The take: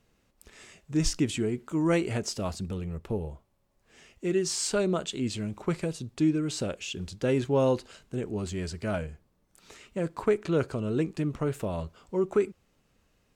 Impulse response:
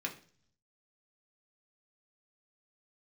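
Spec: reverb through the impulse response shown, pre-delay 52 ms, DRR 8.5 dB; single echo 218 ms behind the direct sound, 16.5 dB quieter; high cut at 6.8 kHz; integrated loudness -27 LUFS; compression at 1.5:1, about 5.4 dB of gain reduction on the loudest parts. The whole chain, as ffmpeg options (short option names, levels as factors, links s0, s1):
-filter_complex "[0:a]lowpass=6800,acompressor=threshold=0.0178:ratio=1.5,aecho=1:1:218:0.15,asplit=2[s0][s1];[1:a]atrim=start_sample=2205,adelay=52[s2];[s1][s2]afir=irnorm=-1:irlink=0,volume=0.282[s3];[s0][s3]amix=inputs=2:normalize=0,volume=2.11"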